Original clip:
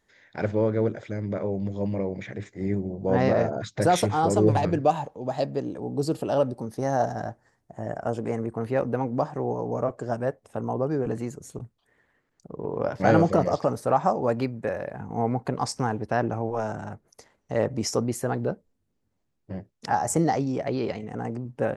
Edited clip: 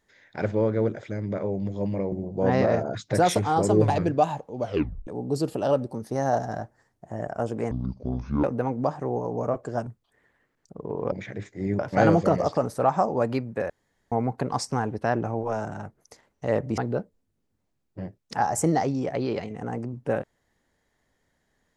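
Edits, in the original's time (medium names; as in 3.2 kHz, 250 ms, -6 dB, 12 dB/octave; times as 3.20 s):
2.12–2.79 s: move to 12.86 s
5.26 s: tape stop 0.48 s
8.38–8.78 s: speed 55%
10.21–11.61 s: delete
14.77–15.19 s: room tone
17.85–18.30 s: delete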